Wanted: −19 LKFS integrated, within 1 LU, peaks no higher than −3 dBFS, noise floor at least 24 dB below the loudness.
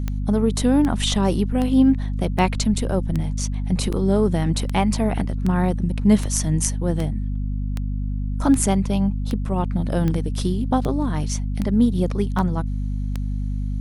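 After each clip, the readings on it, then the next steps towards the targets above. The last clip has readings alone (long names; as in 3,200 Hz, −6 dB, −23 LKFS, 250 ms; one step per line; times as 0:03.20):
number of clicks 18; mains hum 50 Hz; hum harmonics up to 250 Hz; level of the hum −22 dBFS; integrated loudness −22.0 LKFS; sample peak −2.5 dBFS; target loudness −19.0 LKFS
→ click removal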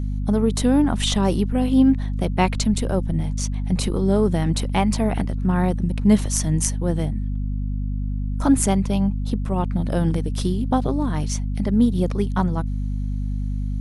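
number of clicks 0; mains hum 50 Hz; hum harmonics up to 250 Hz; level of the hum −22 dBFS
→ hum removal 50 Hz, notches 5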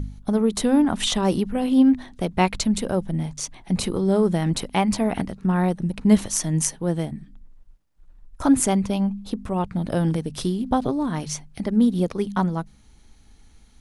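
mains hum none found; integrated loudness −22.5 LKFS; sample peak −2.5 dBFS; target loudness −19.0 LKFS
→ level +3.5 dB
brickwall limiter −3 dBFS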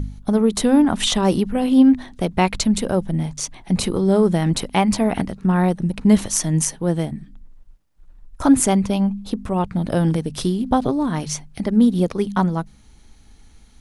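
integrated loudness −19.5 LKFS; sample peak −3.0 dBFS; background noise floor −49 dBFS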